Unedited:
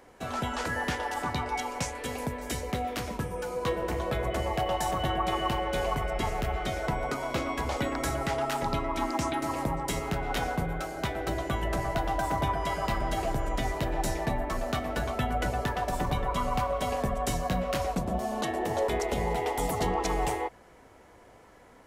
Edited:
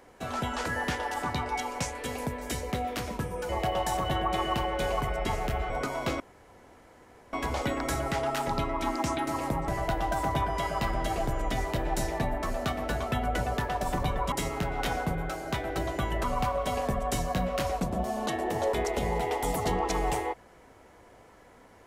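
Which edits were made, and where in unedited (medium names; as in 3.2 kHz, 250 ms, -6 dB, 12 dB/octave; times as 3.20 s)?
3.49–4.43 s: delete
6.64–6.98 s: delete
7.48 s: insert room tone 1.13 s
9.83–11.75 s: move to 16.39 s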